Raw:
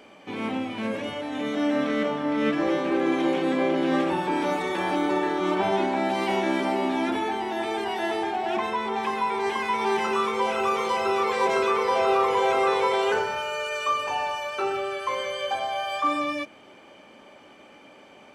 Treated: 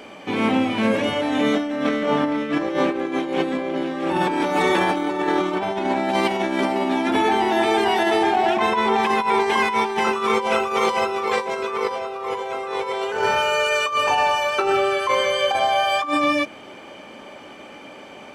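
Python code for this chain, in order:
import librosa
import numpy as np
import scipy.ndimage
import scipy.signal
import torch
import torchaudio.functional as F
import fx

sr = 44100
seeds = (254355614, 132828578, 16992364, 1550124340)

y = fx.over_compress(x, sr, threshold_db=-27.0, ratio=-0.5)
y = y * librosa.db_to_amplitude(7.0)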